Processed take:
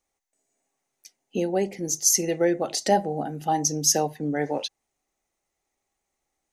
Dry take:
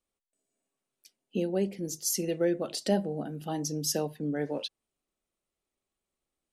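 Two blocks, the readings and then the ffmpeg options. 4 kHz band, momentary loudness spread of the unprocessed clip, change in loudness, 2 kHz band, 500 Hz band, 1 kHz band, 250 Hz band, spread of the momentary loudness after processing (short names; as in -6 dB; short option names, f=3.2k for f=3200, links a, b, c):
+6.5 dB, 7 LU, +7.0 dB, +8.0 dB, +5.5 dB, +14.0 dB, +3.5 dB, 10 LU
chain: -af "equalizer=f=200:t=o:w=0.33:g=-5,equalizer=f=800:t=o:w=0.33:g=11,equalizer=f=2k:t=o:w=0.33:g=8,equalizer=f=3.15k:t=o:w=0.33:g=-3,equalizer=f=6.3k:t=o:w=0.33:g=10,volume=4.5dB"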